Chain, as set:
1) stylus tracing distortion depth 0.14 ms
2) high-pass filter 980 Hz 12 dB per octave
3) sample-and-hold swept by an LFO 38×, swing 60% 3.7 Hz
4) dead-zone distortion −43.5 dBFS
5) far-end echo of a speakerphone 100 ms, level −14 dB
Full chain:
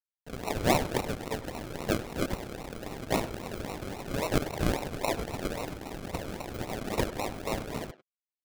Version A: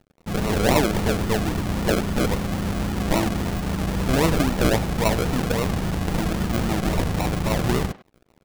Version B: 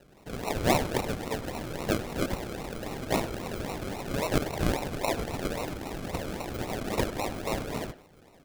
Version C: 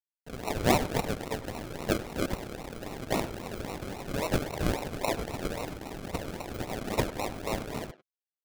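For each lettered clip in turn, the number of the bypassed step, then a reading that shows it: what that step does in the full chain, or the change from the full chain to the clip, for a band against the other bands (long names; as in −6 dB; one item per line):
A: 2, 125 Hz band +4.5 dB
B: 4, distortion level −15 dB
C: 1, change in crest factor +2.0 dB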